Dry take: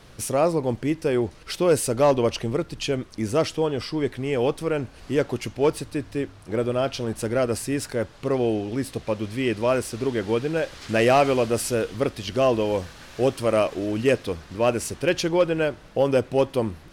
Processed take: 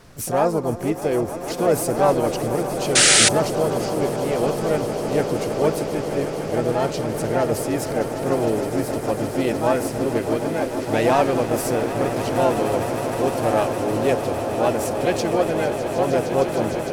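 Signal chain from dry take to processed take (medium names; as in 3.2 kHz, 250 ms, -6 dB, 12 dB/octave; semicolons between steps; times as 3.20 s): echo with a slow build-up 153 ms, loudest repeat 8, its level -13 dB; harmony voices +5 st -5 dB; in parallel at 0 dB: gain riding 2 s; on the sum: peaking EQ 3.2 kHz -5.5 dB 0.96 oct; painted sound noise, 2.95–3.29 s, 1.2–10 kHz -7 dBFS; trim -7 dB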